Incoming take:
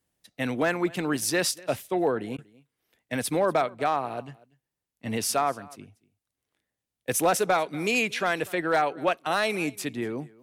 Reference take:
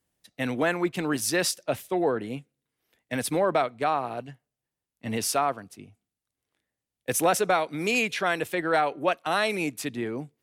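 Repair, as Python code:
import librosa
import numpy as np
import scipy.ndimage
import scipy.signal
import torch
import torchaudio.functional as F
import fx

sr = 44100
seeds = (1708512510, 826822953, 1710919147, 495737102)

y = fx.fix_declip(x, sr, threshold_db=-15.0)
y = fx.fix_interpolate(y, sr, at_s=(2.37,), length_ms=12.0)
y = fx.fix_echo_inverse(y, sr, delay_ms=240, level_db=-23.0)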